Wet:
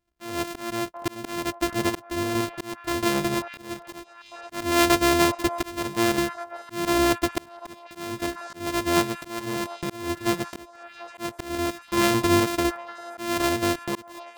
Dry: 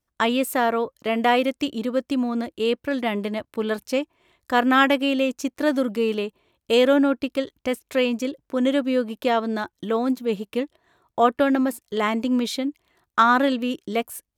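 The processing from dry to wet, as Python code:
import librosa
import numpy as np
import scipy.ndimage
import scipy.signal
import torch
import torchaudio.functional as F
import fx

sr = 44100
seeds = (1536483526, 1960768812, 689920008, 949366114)

y = np.r_[np.sort(x[:len(x) // 128 * 128].reshape(-1, 128), axis=1).ravel(), x[len(x) // 128 * 128:]]
y = fx.echo_stepped(y, sr, ms=741, hz=810.0, octaves=0.7, feedback_pct=70, wet_db=-12.0)
y = fx.auto_swell(y, sr, attack_ms=514.0)
y = y * librosa.db_to_amplitude(2.0)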